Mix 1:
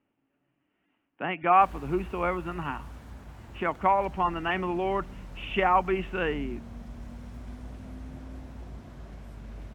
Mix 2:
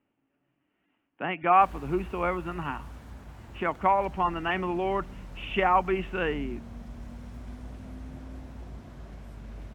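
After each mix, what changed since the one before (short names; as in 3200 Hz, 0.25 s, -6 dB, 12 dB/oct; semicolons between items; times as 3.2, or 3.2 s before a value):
none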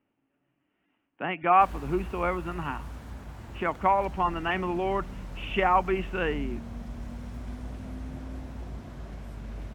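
background +3.5 dB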